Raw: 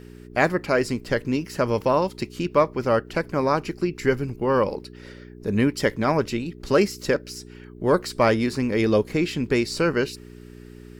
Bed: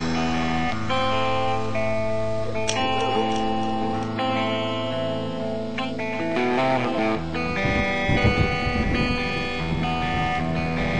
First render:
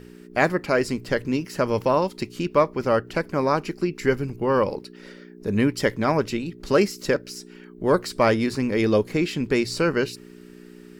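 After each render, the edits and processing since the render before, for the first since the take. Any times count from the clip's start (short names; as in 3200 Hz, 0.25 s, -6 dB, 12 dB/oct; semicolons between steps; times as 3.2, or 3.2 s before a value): de-hum 60 Hz, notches 2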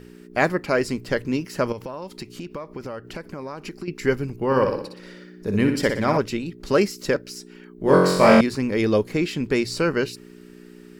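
1.72–3.88 compressor 10:1, threshold -29 dBFS; 4.45–6.18 flutter echo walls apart 10.4 m, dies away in 0.58 s; 7.83–8.41 flutter echo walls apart 3.8 m, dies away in 0.99 s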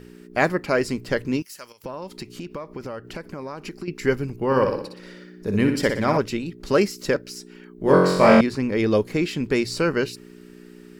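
1.42–1.84 pre-emphasis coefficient 0.97; 7.92–8.91 high shelf 6200 Hz -7.5 dB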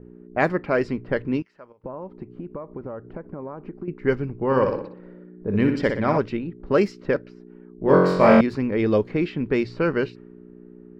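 low-pass opened by the level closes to 640 Hz, open at -14 dBFS; bell 9800 Hz -15 dB 1.9 oct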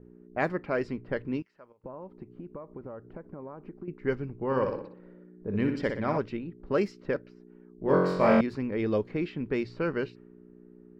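gain -7.5 dB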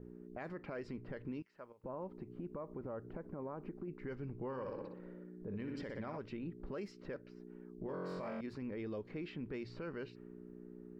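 compressor 2.5:1, threshold -38 dBFS, peak gain reduction 13.5 dB; limiter -35 dBFS, peak gain reduction 11.5 dB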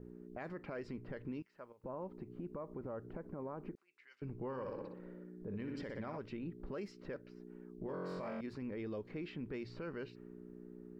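3.75–4.22 Butterworth band-pass 4800 Hz, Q 0.67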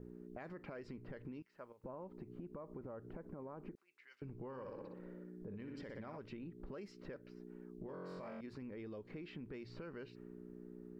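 compressor, threshold -45 dBFS, peak gain reduction 6.5 dB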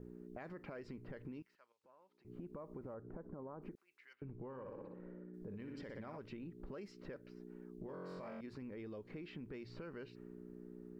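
1.55–2.25 band-pass 4300 Hz, Q 1.1; 2.94–3.62 LPF 1600 Hz 24 dB/oct; 4.13–5.34 air absorption 380 m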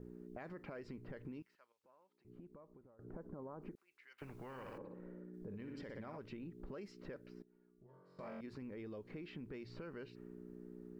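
1.55–2.99 fade out, to -21 dB; 4.18–4.78 spectral compressor 2:1; 7.42–8.19 resonator 130 Hz, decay 0.74 s, harmonics odd, mix 90%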